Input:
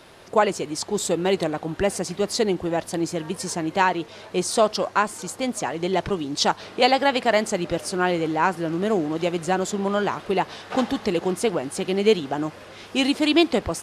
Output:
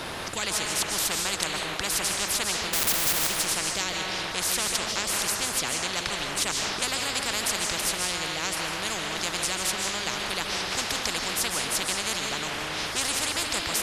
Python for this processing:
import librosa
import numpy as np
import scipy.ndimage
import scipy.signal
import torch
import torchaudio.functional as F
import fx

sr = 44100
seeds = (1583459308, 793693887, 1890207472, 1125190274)

y = fx.schmitt(x, sr, flips_db=-41.0, at=(2.73, 3.27))
y = fx.rev_freeverb(y, sr, rt60_s=0.96, hf_ratio=0.6, predelay_ms=110, drr_db=5.5)
y = fx.spectral_comp(y, sr, ratio=10.0)
y = y * librosa.db_to_amplitude(1.5)